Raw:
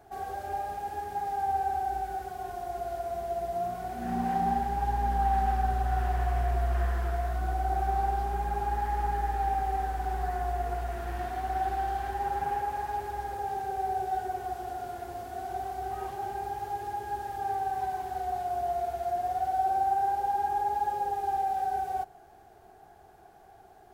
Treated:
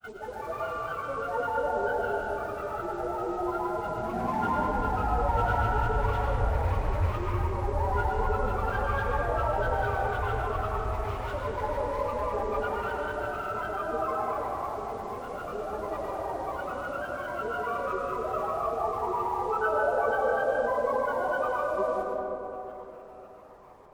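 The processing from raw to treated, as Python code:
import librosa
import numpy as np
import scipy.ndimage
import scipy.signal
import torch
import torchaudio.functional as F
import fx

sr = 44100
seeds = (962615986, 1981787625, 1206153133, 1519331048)

y = fx.granulator(x, sr, seeds[0], grain_ms=100.0, per_s=20.0, spray_ms=100.0, spread_st=12)
y = fx.rev_freeverb(y, sr, rt60_s=3.6, hf_ratio=0.35, predelay_ms=65, drr_db=-1.5)
y = y * 10.0 ** (-2.0 / 20.0)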